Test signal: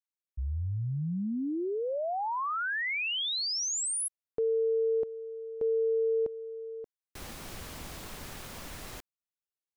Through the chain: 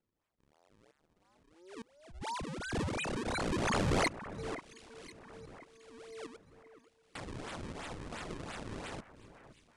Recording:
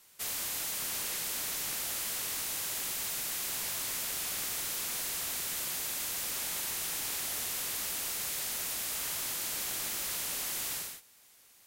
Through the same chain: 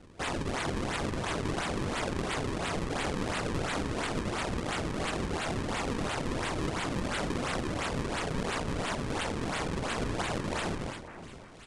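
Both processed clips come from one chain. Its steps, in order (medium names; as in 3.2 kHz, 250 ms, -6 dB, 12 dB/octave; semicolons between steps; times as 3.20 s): octave divider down 1 oct, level -2 dB; differentiator; band-stop 3.4 kHz, Q 25; in parallel at -2 dB: compression, threshold -48 dBFS; on the sum: LFO high-pass saw down 1.1 Hz 450–1800 Hz; decimation with a swept rate 36×, swing 160% 2.9 Hz; on a send: echo whose repeats swap between lows and highs 520 ms, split 2.2 kHz, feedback 58%, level -13 dB; on the sum: resampled via 22.05 kHz; loudspeaker Doppler distortion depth 0.17 ms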